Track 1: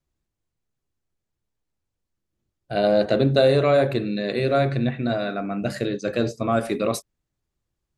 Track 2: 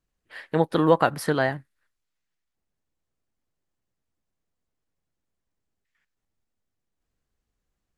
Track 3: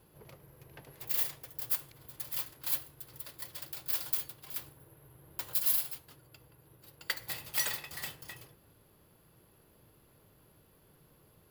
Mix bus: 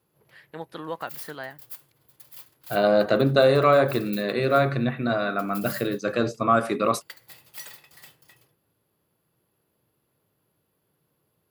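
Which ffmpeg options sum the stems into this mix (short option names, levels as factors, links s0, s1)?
-filter_complex "[0:a]equalizer=f=1200:t=o:w=0.63:g=11,volume=0.841[s0];[1:a]tiltshelf=f=780:g=-4.5,volume=0.211[s1];[2:a]volume=0.376[s2];[s0][s1][s2]amix=inputs=3:normalize=0,highpass=100"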